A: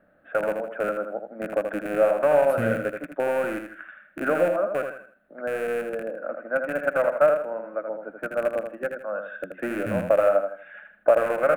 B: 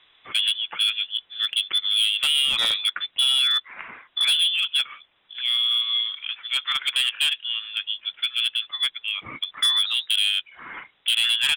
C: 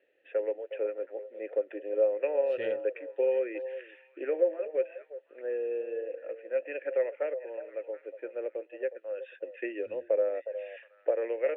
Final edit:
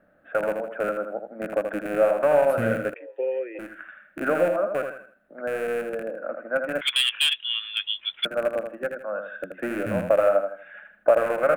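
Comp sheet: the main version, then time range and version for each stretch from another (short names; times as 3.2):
A
2.94–3.59 from C
6.81–8.25 from B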